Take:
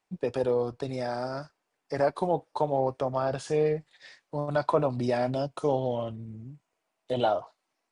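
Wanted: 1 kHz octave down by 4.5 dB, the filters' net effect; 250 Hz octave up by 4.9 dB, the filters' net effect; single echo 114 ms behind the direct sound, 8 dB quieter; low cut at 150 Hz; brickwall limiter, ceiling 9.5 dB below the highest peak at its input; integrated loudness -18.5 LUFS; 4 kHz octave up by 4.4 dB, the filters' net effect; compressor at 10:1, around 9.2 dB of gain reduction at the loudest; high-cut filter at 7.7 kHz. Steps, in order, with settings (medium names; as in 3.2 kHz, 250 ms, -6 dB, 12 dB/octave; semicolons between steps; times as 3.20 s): high-pass 150 Hz; low-pass 7.7 kHz; peaking EQ 250 Hz +7 dB; peaking EQ 1 kHz -7.5 dB; peaking EQ 4 kHz +6.5 dB; compression 10:1, threshold -29 dBFS; peak limiter -28.5 dBFS; delay 114 ms -8 dB; trim +20 dB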